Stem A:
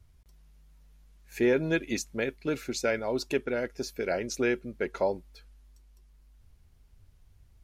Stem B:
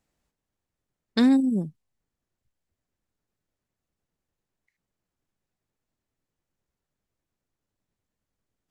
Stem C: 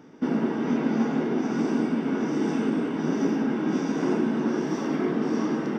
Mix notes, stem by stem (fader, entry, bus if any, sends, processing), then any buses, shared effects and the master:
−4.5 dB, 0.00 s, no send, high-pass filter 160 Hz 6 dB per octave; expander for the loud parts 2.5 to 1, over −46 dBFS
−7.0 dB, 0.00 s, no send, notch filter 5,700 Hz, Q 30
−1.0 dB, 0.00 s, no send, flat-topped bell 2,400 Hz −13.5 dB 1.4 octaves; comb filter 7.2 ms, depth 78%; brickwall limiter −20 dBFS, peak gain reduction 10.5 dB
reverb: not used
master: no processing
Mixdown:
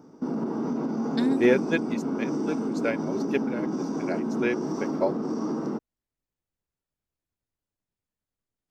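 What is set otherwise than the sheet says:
stem A −4.5 dB → +5.5 dB
stem C: missing comb filter 7.2 ms, depth 78%

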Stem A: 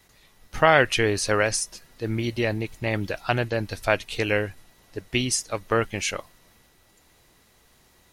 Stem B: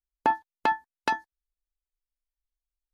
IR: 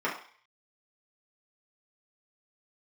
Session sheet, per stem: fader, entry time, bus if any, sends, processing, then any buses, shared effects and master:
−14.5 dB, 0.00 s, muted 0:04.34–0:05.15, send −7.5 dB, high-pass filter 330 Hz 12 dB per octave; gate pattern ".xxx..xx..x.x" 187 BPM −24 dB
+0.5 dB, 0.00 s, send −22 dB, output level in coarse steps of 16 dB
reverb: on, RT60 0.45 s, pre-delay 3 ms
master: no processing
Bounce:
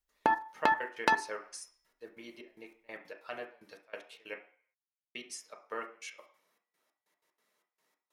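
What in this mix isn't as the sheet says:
stem A −14.5 dB → −21.0 dB
stem B +0.5 dB → +8.5 dB

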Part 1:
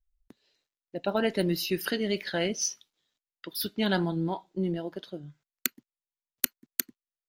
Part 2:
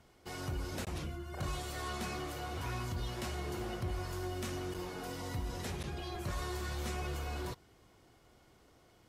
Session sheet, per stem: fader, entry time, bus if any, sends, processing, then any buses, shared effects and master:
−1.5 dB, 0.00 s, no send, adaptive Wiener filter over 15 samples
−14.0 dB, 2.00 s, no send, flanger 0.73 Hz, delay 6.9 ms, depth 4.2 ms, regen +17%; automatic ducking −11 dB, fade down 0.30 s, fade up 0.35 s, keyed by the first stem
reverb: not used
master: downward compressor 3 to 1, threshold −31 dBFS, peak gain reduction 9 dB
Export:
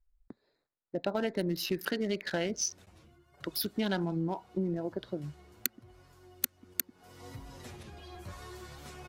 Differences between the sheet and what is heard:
stem 1 −1.5 dB → +5.0 dB
stem 2 −14.0 dB → −3.5 dB

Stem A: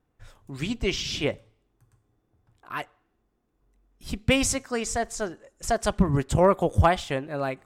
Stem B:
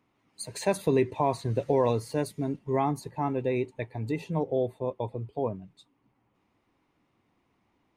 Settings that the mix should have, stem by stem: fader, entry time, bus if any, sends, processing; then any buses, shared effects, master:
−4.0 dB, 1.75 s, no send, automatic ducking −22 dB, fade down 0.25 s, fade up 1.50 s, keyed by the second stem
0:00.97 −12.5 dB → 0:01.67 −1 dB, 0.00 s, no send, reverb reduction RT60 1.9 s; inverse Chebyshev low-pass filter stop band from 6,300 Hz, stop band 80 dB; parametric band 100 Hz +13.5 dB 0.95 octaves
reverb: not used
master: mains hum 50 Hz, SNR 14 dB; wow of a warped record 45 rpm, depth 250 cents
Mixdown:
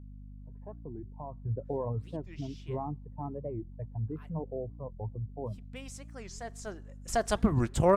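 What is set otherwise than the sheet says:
stem A: entry 1.75 s → 1.45 s
stem B −12.5 dB → −21.0 dB

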